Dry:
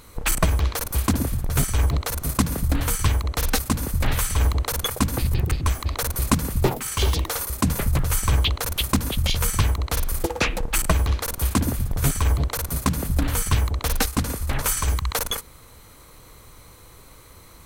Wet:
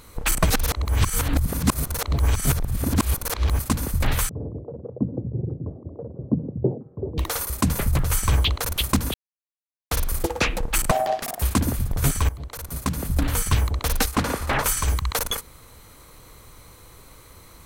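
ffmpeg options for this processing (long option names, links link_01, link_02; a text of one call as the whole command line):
ffmpeg -i in.wav -filter_complex "[0:a]asettb=1/sr,asplit=3[link_01][link_02][link_03];[link_01]atrim=end=4.294[link_04];[link_02]atrim=start=4.29:end=7.18,asetpts=PTS-STARTPTS,afade=type=in:duration=0.004:curve=qsin,afade=type=out:start_time=2.886:duration=0.004:curve=qsin,asuperpass=centerf=240:order=8:qfactor=0.53[link_05];[link_03]atrim=start=7.176[link_06];[link_04][link_05]acrossfade=duration=0.004:curve1=hsin:curve2=qsin[link_07];[link_07][link_06]acrossfade=duration=0.004:curve1=qsin:curve2=hsin,asettb=1/sr,asplit=3[link_08][link_09][link_10];[link_08]atrim=end=10.914[link_11];[link_09]atrim=start=10.91:end=11.42,asetpts=PTS-STARTPTS,afade=type=in:duration=0.004:curve=qsin,afade=type=out:start_time=0.506:duration=0.004:curve=qsin,aeval=exprs='val(0)*sin(2*PI*700*n/s)':channel_layout=same[link_12];[link_10]atrim=start=11.416[link_13];[link_11][link_12]acrossfade=duration=0.004:curve1=hsin:curve2=qsin[link_14];[link_14][link_13]acrossfade=duration=0.004:curve1=qsin:curve2=hsin,asettb=1/sr,asplit=3[link_15][link_16][link_17];[link_15]atrim=end=14.144[link_18];[link_16]atrim=start=14.14:end=14.64,asetpts=PTS-STARTPTS,afade=type=in:duration=0.004:curve=qsin,afade=type=out:start_time=0.496:duration=0.004:curve=qsin,asplit=2[link_19][link_20];[link_20]highpass=frequency=720:poles=1,volume=20dB,asoftclip=type=tanh:threshold=-8.5dB[link_21];[link_19][link_21]amix=inputs=2:normalize=0,lowpass=frequency=1500:poles=1,volume=-6dB[link_22];[link_17]atrim=start=14.636[link_23];[link_18][link_22]acrossfade=duration=0.004:curve1=hsin:curve2=qsin[link_24];[link_24][link_23]acrossfade=duration=0.004:curve1=qsin:curve2=hsin,asplit=6[link_25][link_26][link_27][link_28][link_29][link_30];[link_25]atrim=end=0.502[link_31];[link_26]atrim=start=0.498:end=3.592,asetpts=PTS-STARTPTS,areverse[link_32];[link_27]atrim=start=3.588:end=9.14,asetpts=PTS-STARTPTS,afade=type=out:start_time=5.548:duration=0.004:curve=hsin[link_33];[link_28]atrim=start=9.14:end=9.91,asetpts=PTS-STARTPTS,volume=0[link_34];[link_29]atrim=start=9.91:end=12.29,asetpts=PTS-STARTPTS,afade=type=in:duration=0.004:curve=hsin,afade=type=out:start_time=2.376:duration=0.004:curve=hsin:silence=0.125893[link_35];[link_30]atrim=start=12.29,asetpts=PTS-STARTPTS,afade=type=in:duration=0.94:silence=0.125893[link_36];[link_31][link_32]acrossfade=duration=0.004:curve1=hsin:curve2=hsin[link_37];[link_33][link_34][link_35][link_36]concat=n=4:v=0:a=1[link_38];[link_37][link_38]acrossfade=duration=0.004:curve1=hsin:curve2=hsin" out.wav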